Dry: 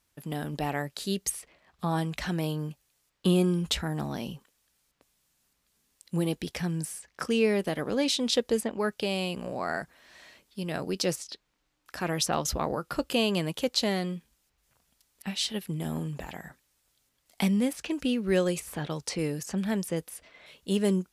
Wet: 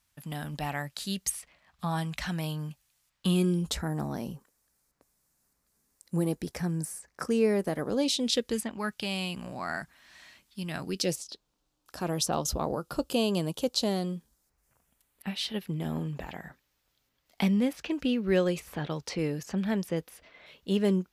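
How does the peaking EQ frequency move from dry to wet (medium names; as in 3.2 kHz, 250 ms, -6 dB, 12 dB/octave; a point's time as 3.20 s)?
peaking EQ -11.5 dB 0.97 oct
3.29 s 390 Hz
3.76 s 3.1 kHz
7.79 s 3.1 kHz
8.66 s 470 Hz
10.82 s 470 Hz
11.24 s 2 kHz
14.05 s 2 kHz
15.65 s 9.2 kHz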